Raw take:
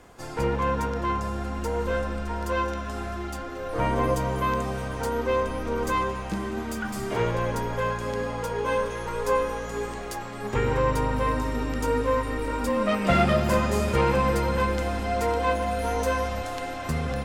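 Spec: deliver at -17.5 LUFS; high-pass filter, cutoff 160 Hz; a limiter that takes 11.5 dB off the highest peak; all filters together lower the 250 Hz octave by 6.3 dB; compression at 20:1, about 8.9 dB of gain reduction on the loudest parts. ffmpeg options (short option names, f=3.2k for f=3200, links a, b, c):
-af "highpass=160,equalizer=f=250:t=o:g=-7,acompressor=threshold=-27dB:ratio=20,volume=19dB,alimiter=limit=-9dB:level=0:latency=1"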